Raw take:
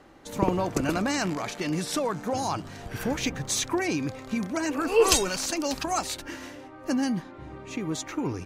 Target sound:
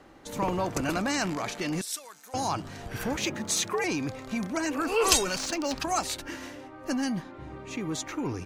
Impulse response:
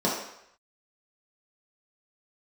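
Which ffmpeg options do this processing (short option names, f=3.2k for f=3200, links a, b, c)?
-filter_complex "[0:a]asettb=1/sr,asplit=3[a][b][c];[a]atrim=end=1.814[d];[b]atrim=start=1.81:end=2.34,asetpts=PTS-STARTPTS,afade=t=in:d=0.004:c=qsin,afade=t=out:st=0.526:d=0.004:c=qsin,aderivative[e];[c]atrim=start=2.336[f];[d][e]acrossfade=d=0.004:c1=hsin:c2=qsin[g];[g][f]acrossfade=d=0.004:c1=qsin:c2=hsin,acrossover=split=680[h][i];[h]asoftclip=type=tanh:threshold=-25.5dB[j];[j][i]amix=inputs=2:normalize=0,asettb=1/sr,asplit=3[k][l][m];[k]atrim=end=3.174[n];[l]atrim=start=3.17:end=3.84,asetpts=PTS-STARTPTS,afade=t=in:d=0.004:c=qsin,afade=t=out:st=0.666:d=0.004:c=qsin,afreqshift=79[o];[m]atrim=start=3.836[p];[n][o]acrossfade=d=0.004:c1=hsin:c2=qsin[q];[q][p]acrossfade=d=0.004:c1=qsin:c2=hsin,asettb=1/sr,asplit=3[r][s][t];[r]atrim=end=5.384[u];[s]atrim=start=5.38:end=5.8,asetpts=PTS-STARTPTS,afade=t=in:d=0.004:c=qsin,afade=t=out:st=0.416:d=0.004:c=qsin,adynamicsmooth=sensitivity=5:basefreq=3.9k[v];[t]atrim=start=5.796[w];[u][v]acrossfade=d=0.004:c1=hsin:c2=qsin[x];[x][w]acrossfade=d=0.004:c1=qsin:c2=hsin"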